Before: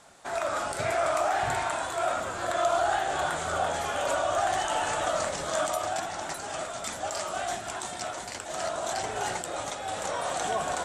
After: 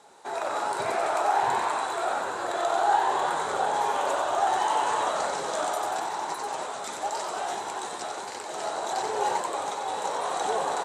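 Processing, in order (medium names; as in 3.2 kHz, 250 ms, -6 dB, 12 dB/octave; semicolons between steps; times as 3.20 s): high-pass 150 Hz 12 dB/octave; small resonant body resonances 420/830/3900 Hz, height 12 dB, ringing for 30 ms; on a send: frequency-shifting echo 92 ms, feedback 58%, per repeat +100 Hz, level -5 dB; on the sum: trim -4 dB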